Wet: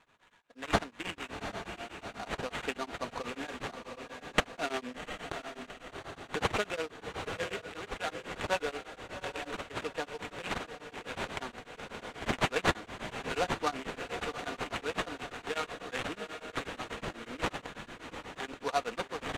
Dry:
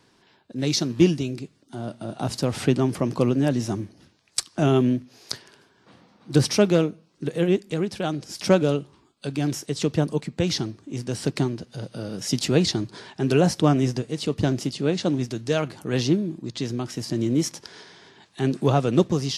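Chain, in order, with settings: Bessel high-pass 1200 Hz, order 2; comb 4.2 ms, depth 56%; sample-rate reducer 5200 Hz, jitter 20%; air absorption 72 m; on a send: diffused feedback echo 0.758 s, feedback 53%, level -7 dB; on the sum: beating tremolo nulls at 8.2 Hz

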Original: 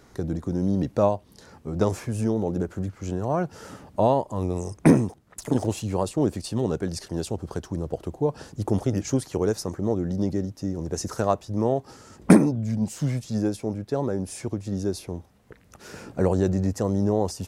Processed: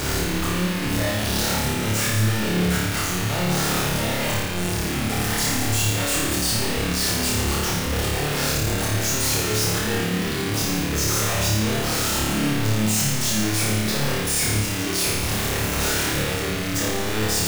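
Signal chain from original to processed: infinite clipping; passive tone stack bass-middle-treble 5-5-5; notch 930 Hz, Q 18; sample leveller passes 5; resonator 910 Hz, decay 0.33 s, mix 60%; flutter echo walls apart 4.8 m, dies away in 1.1 s; gain +8 dB

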